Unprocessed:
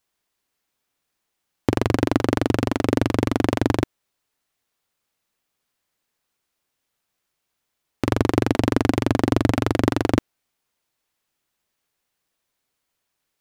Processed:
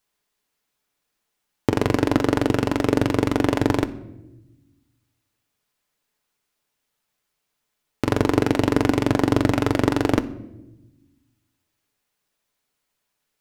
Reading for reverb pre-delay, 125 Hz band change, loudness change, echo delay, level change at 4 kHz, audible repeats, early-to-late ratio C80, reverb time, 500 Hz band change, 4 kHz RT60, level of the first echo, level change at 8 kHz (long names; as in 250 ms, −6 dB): 5 ms, −0.5 dB, +0.5 dB, no echo audible, +0.5 dB, no echo audible, 18.5 dB, 1.0 s, +1.5 dB, 0.65 s, no echo audible, +0.5 dB